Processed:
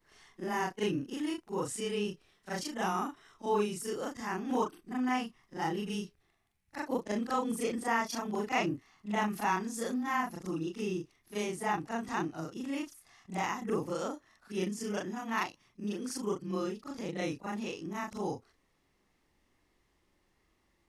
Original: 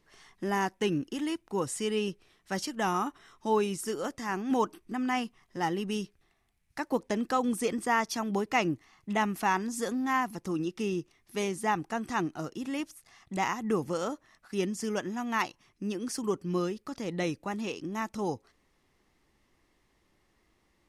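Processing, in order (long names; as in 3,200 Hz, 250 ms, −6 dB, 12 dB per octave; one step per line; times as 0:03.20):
every overlapping window played backwards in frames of 87 ms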